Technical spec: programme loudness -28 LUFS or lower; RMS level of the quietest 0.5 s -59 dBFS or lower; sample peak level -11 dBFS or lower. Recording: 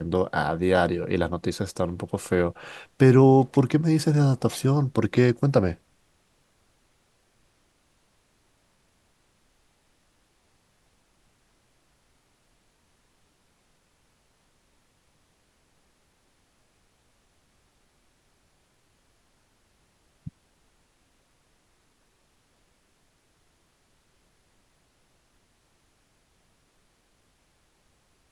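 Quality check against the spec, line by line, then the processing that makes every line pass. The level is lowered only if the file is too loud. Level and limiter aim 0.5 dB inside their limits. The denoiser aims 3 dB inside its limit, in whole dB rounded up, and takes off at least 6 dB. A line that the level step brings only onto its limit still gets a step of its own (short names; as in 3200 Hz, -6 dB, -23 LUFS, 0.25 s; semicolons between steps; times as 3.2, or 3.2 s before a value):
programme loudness -22.5 LUFS: fail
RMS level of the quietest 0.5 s -66 dBFS: OK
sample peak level -4.5 dBFS: fail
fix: gain -6 dB; limiter -11.5 dBFS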